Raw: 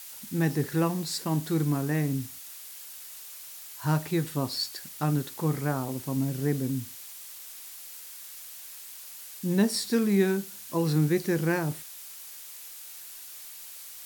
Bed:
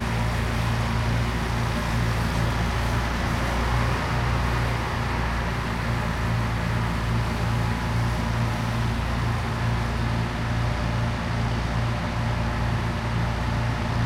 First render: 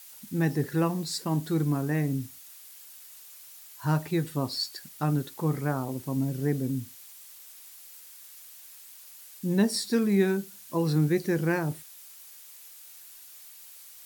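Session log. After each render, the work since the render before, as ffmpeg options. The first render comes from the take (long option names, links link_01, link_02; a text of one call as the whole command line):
ffmpeg -i in.wav -af "afftdn=noise_reduction=6:noise_floor=-44" out.wav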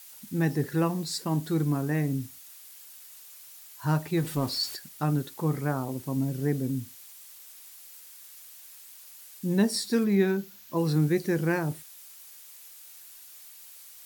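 ffmpeg -i in.wav -filter_complex "[0:a]asettb=1/sr,asplit=3[link_01][link_02][link_03];[link_01]atrim=end=4.174[link_04];[link_02]atrim=start=4.17:end=4.76,asetpts=PTS-STARTPTS,afade=type=in:duration=0.004:curve=qsin,afade=type=out:start_time=0.586:duration=0.004:curve=qsin,aeval=exprs='val(0)+0.5*0.0141*sgn(val(0))':channel_layout=same[link_05];[link_03]atrim=start=4.756[link_06];[link_04][link_05]acrossfade=duration=0.004:curve1=hsin:curve2=qsin[link_07];[link_07][link_06]acrossfade=duration=0.004:curve1=qsin:curve2=hsin,asettb=1/sr,asplit=3[link_08][link_09][link_10];[link_08]atrim=end=10.044[link_11];[link_09]atrim=start=10.04:end=10.77,asetpts=PTS-STARTPTS,afade=type=in:duration=0.004:curve=qsin,afade=type=out:start_time=0.726:duration=0.004:curve=qsin,equalizer=frequency=9200:width=1.8:gain=-11[link_12];[link_10]atrim=start=10.766[link_13];[link_11][link_12]acrossfade=duration=0.004:curve1=hsin:curve2=qsin[link_14];[link_14][link_13]acrossfade=duration=0.004:curve1=qsin:curve2=hsin" out.wav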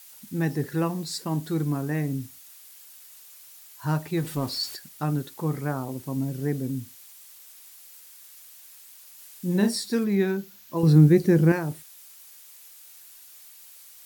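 ffmpeg -i in.wav -filter_complex "[0:a]asettb=1/sr,asplit=3[link_01][link_02][link_03];[link_01]atrim=end=9.144[link_04];[link_02]atrim=start=9.14:end=9.74,asetpts=PTS-STARTPTS,afade=type=in:duration=0.004:curve=qsin,afade=type=out:start_time=0.596:duration=0.004:curve=qsin,asplit=2[link_05][link_06];[link_06]adelay=39,volume=-4.5dB[link_07];[link_05][link_07]amix=inputs=2:normalize=0,atrim=end_sample=26460[link_08];[link_03]atrim=start=9.736[link_09];[link_04][link_08]acrossfade=duration=0.004:curve1=hsin:curve2=qsin[link_10];[link_10][link_09]acrossfade=duration=0.004:curve1=qsin:curve2=hsin,asettb=1/sr,asplit=3[link_11][link_12][link_13];[link_11]atrim=end=10.834[link_14];[link_12]atrim=start=10.83:end=11.52,asetpts=PTS-STARTPTS,afade=type=in:duration=0.004:curve=qsin,afade=type=out:start_time=0.686:duration=0.004:curve=qsin,lowshelf=frequency=480:gain=11[link_15];[link_13]atrim=start=11.516[link_16];[link_14][link_15]acrossfade=duration=0.004:curve1=hsin:curve2=qsin[link_17];[link_17][link_16]acrossfade=duration=0.004:curve1=qsin:curve2=hsin" out.wav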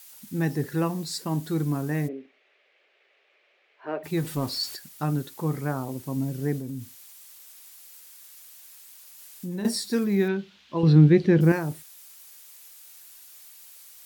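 ffmpeg -i in.wav -filter_complex "[0:a]asplit=3[link_01][link_02][link_03];[link_01]afade=type=out:start_time=2.07:duration=0.02[link_04];[link_02]highpass=frequency=330:width=0.5412,highpass=frequency=330:width=1.3066,equalizer=frequency=410:width_type=q:width=4:gain=9,equalizer=frequency=590:width_type=q:width=4:gain=7,equalizer=frequency=960:width_type=q:width=4:gain=-9,equalizer=frequency=1400:width_type=q:width=4:gain=-5,equalizer=frequency=2300:width_type=q:width=4:gain=4,lowpass=frequency=2600:width=0.5412,lowpass=frequency=2600:width=1.3066,afade=type=in:start_time=2.07:duration=0.02,afade=type=out:start_time=4.03:duration=0.02[link_05];[link_03]afade=type=in:start_time=4.03:duration=0.02[link_06];[link_04][link_05][link_06]amix=inputs=3:normalize=0,asettb=1/sr,asplit=3[link_07][link_08][link_09];[link_07]atrim=end=6.584[link_10];[link_08]atrim=start=6.58:end=9.65,asetpts=PTS-STARTPTS,afade=type=in:duration=0.004:curve=qsin,afade=type=out:start_time=3.066:duration=0.004:curve=qsin,acompressor=threshold=-31dB:ratio=3:attack=3.2:release=140:knee=1:detection=peak[link_11];[link_09]atrim=start=9.646[link_12];[link_10][link_11]acrossfade=duration=0.004:curve1=hsin:curve2=qsin[link_13];[link_13][link_12]acrossfade=duration=0.004:curve1=qsin:curve2=hsin,asettb=1/sr,asplit=3[link_14][link_15][link_16];[link_14]atrim=end=10.284[link_17];[link_15]atrim=start=10.28:end=11.41,asetpts=PTS-STARTPTS,afade=type=in:duration=0.004:curve=qsin,afade=type=out:start_time=1.126:duration=0.004:curve=qsin,lowpass=frequency=3300:width_type=q:width=2.2[link_18];[link_16]atrim=start=11.406[link_19];[link_17][link_18]acrossfade=duration=0.004:curve1=hsin:curve2=qsin[link_20];[link_20][link_19]acrossfade=duration=0.004:curve1=qsin:curve2=hsin" out.wav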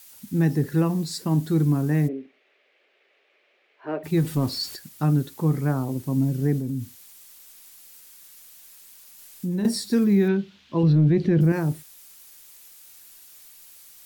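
ffmpeg -i in.wav -filter_complex "[0:a]acrossover=split=350|1200[link_01][link_02][link_03];[link_01]acontrast=78[link_04];[link_04][link_02][link_03]amix=inputs=3:normalize=0,alimiter=limit=-12dB:level=0:latency=1:release=72" out.wav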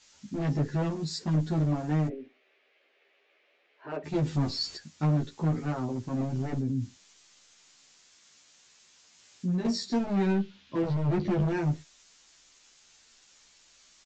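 ffmpeg -i in.wav -filter_complex "[0:a]aresample=16000,asoftclip=type=hard:threshold=-21dB,aresample=44100,asplit=2[link_01][link_02];[link_02]adelay=12,afreqshift=0.27[link_03];[link_01][link_03]amix=inputs=2:normalize=1" out.wav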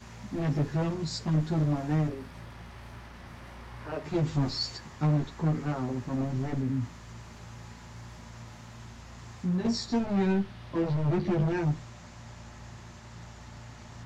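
ffmpeg -i in.wav -i bed.wav -filter_complex "[1:a]volume=-21.5dB[link_01];[0:a][link_01]amix=inputs=2:normalize=0" out.wav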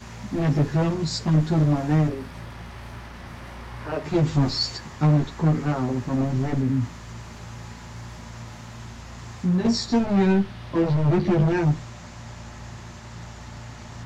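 ffmpeg -i in.wav -af "volume=7dB" out.wav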